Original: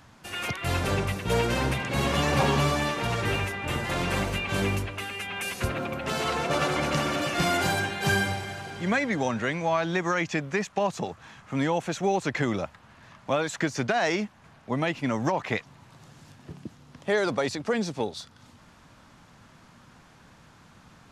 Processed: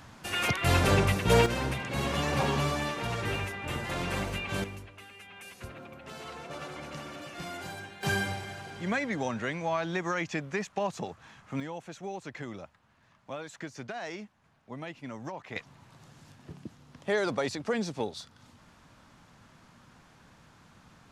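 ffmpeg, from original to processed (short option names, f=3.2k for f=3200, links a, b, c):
-af "asetnsamples=n=441:p=0,asendcmd='1.46 volume volume -5dB;4.64 volume volume -15dB;8.03 volume volume -5dB;11.6 volume volume -13.5dB;15.56 volume volume -3.5dB',volume=3dB"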